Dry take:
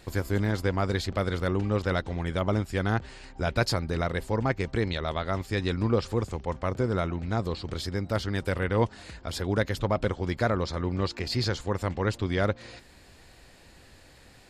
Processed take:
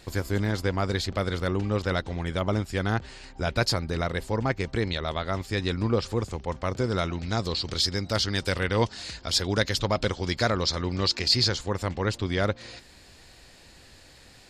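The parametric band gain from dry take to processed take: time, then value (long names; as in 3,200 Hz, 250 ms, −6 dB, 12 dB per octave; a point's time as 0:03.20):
parametric band 5,100 Hz 1.7 octaves
0:06.44 +4.5 dB
0:07.13 +14.5 dB
0:11.20 +14.5 dB
0:11.65 +6 dB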